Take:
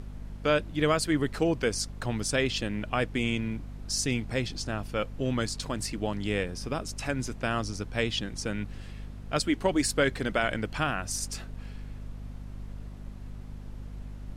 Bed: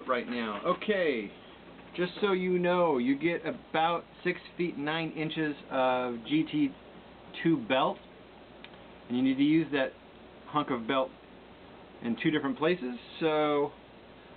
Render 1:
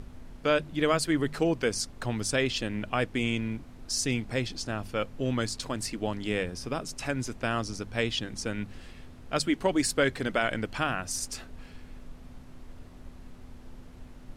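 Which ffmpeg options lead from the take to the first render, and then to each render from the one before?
-af "bandreject=f=50:t=h:w=4,bandreject=f=100:t=h:w=4,bandreject=f=150:t=h:w=4,bandreject=f=200:t=h:w=4"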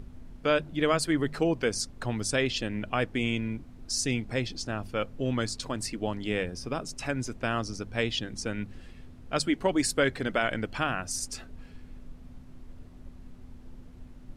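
-af "afftdn=nr=6:nf=-48"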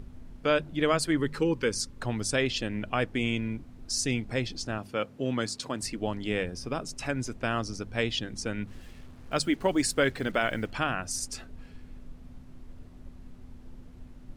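-filter_complex "[0:a]asettb=1/sr,asplit=3[a][b][c];[a]atrim=end=1.174[d];[b]atrim=start=1.17:end=1.98,asetpts=PTS-STARTPTS,afade=t=in:d=0.004:c=qsin,afade=t=out:st=0.806:d=0.004:c=qsin,asuperstop=centerf=690:order=8:qfactor=3[e];[c]atrim=start=1.976[f];[d][e]acrossfade=d=0.004:c1=hsin:c2=qsin[g];[g][f]acrossfade=d=0.004:c1=qsin:c2=hsin,asettb=1/sr,asplit=3[h][i][j];[h]atrim=end=4.784[k];[i]atrim=start=4.78:end=5.83,asetpts=PTS-STARTPTS,afade=t=in:d=0.004:c=qsin,afade=t=out:st=1.046:d=0.004:c=qsin,highpass=130[l];[j]atrim=start=5.826[m];[k][l]acrossfade=d=0.004:c1=hsin:c2=qsin[n];[n][m]acrossfade=d=0.004:c1=qsin:c2=hsin,asettb=1/sr,asplit=3[o][p][q];[o]atrim=end=8.674[r];[p]atrim=start=8.67:end=10.72,asetpts=PTS-STARTPTS,afade=t=in:d=0.004:c=qsin,afade=t=out:st=2.046:d=0.004:c=qsin,acrusher=bits=8:mix=0:aa=0.5[s];[q]atrim=start=10.716[t];[r][s]acrossfade=d=0.004:c1=hsin:c2=qsin[u];[u][t]acrossfade=d=0.004:c1=qsin:c2=hsin"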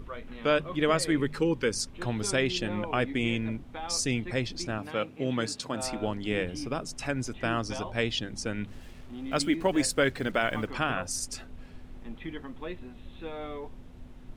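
-filter_complex "[1:a]volume=-11.5dB[a];[0:a][a]amix=inputs=2:normalize=0"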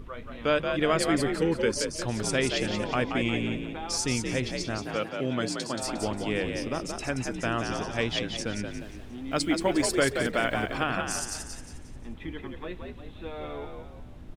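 -filter_complex "[0:a]asplit=6[a][b][c][d][e][f];[b]adelay=178,afreqshift=51,volume=-5.5dB[g];[c]adelay=356,afreqshift=102,volume=-13.7dB[h];[d]adelay=534,afreqshift=153,volume=-21.9dB[i];[e]adelay=712,afreqshift=204,volume=-30dB[j];[f]adelay=890,afreqshift=255,volume=-38.2dB[k];[a][g][h][i][j][k]amix=inputs=6:normalize=0"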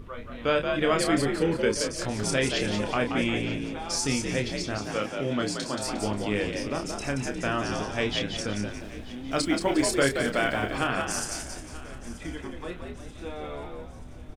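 -filter_complex "[0:a]asplit=2[a][b];[b]adelay=29,volume=-6dB[c];[a][c]amix=inputs=2:normalize=0,aecho=1:1:932|1864|2796|3728:0.119|0.0547|0.0251|0.0116"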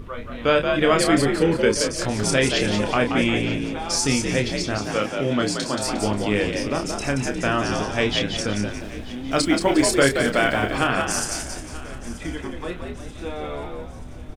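-af "volume=6dB"

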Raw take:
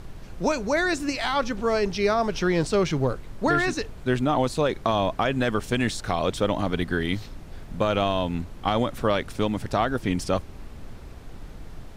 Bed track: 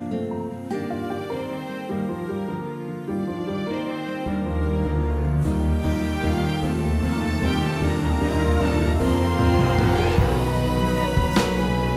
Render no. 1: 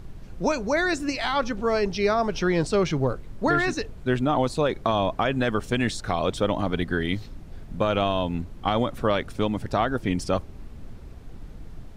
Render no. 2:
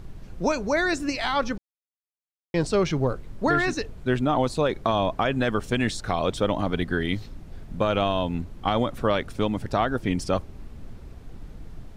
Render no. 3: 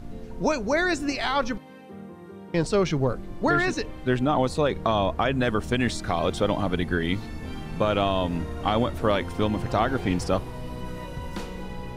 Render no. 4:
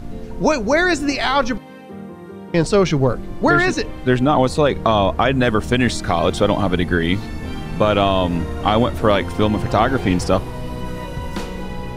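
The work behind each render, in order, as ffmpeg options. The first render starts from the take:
-af "afftdn=nr=6:nf=-42"
-filter_complex "[0:a]asplit=3[a][b][c];[a]atrim=end=1.58,asetpts=PTS-STARTPTS,afade=t=out:st=1.576:d=0.004:c=hsin[d];[b]atrim=start=1.58:end=2.54,asetpts=PTS-STARTPTS,volume=0[e];[c]atrim=start=2.54,asetpts=PTS-STARTPTS,afade=t=in:d=0.004:c=hsin[f];[d][e][f]concat=n=3:v=0:a=1"
-filter_complex "[1:a]volume=-15dB[a];[0:a][a]amix=inputs=2:normalize=0"
-af "volume=7.5dB"

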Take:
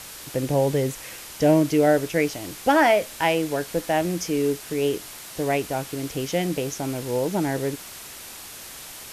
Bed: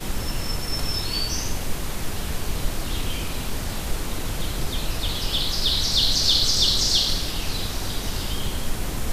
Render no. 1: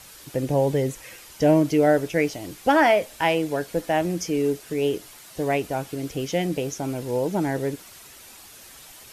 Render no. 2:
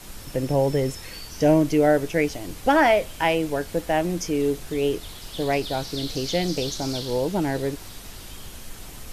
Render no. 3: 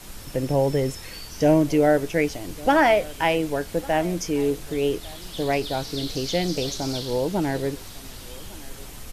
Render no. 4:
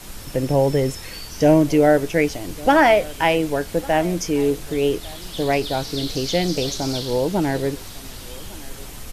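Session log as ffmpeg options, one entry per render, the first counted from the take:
-af "afftdn=nr=8:nf=-40"
-filter_complex "[1:a]volume=-14dB[a];[0:a][a]amix=inputs=2:normalize=0"
-af "aecho=1:1:1153:0.0841"
-af "volume=3.5dB"

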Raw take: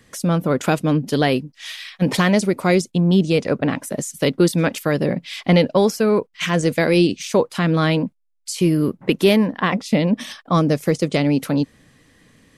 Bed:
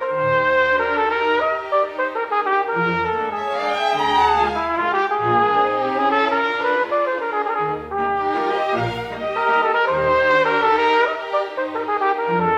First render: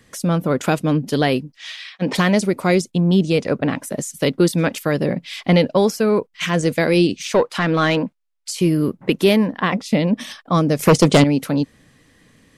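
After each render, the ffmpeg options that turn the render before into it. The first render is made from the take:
-filter_complex "[0:a]asplit=3[a][b][c];[a]afade=t=out:st=1.56:d=0.02[d];[b]highpass=200,lowpass=6.2k,afade=t=in:st=1.56:d=0.02,afade=t=out:st=2.14:d=0.02[e];[c]afade=t=in:st=2.14:d=0.02[f];[d][e][f]amix=inputs=3:normalize=0,asettb=1/sr,asplit=3[g][h][i];[g]atrim=end=7.254[j];[h]atrim=start=7.25:end=8.51,asetpts=PTS-STARTPTS,afade=t=in:d=0.004:c=qsin,afade=t=out:st=1.256:d=0.004:c=qsin,asplit=2[k][l];[l]highpass=f=720:p=1,volume=12dB,asoftclip=type=tanh:threshold=-5.5dB[m];[k][m]amix=inputs=2:normalize=0,lowpass=f=3.3k:p=1,volume=-6dB[n];[i]atrim=start=8.506[o];[j][n]acrossfade=d=0.004:c1=hsin:c2=qsin[p];[p][o]acrossfade=d=0.004:c1=qsin:c2=hsin,asettb=1/sr,asplit=3[q][r][s];[q]atrim=end=10.794[t];[r]atrim=start=10.79:end=11.24,asetpts=PTS-STARTPTS,afade=t=in:d=0.004:c=qsin,afade=t=out:st=0.446:d=0.004:c=qsin,aeval=exprs='0.501*sin(PI/2*2.24*val(0)/0.501)':c=same[u];[s]atrim=start=11.236[v];[t][u]acrossfade=d=0.004:c1=hsin:c2=qsin[w];[w][v]acrossfade=d=0.004:c1=qsin:c2=hsin"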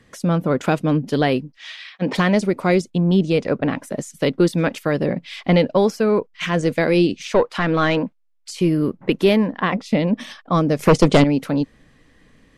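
-af "lowpass=f=3.2k:p=1,asubboost=boost=3:cutoff=51"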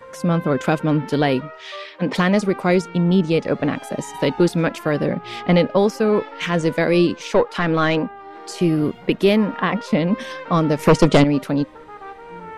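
-filter_complex "[1:a]volume=-17.5dB[a];[0:a][a]amix=inputs=2:normalize=0"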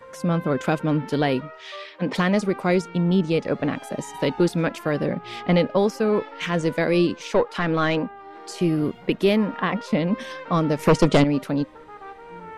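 -af "volume=-3.5dB"

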